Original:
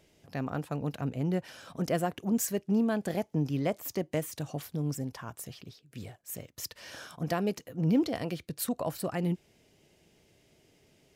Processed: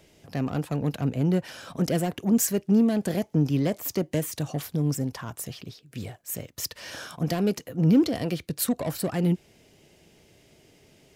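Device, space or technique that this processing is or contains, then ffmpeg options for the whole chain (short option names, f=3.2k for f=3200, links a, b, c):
one-band saturation: -filter_complex "[0:a]acrossover=split=450|2900[a][b][c];[b]asoftclip=type=tanh:threshold=-39dB[d];[a][d][c]amix=inputs=3:normalize=0,volume=7dB"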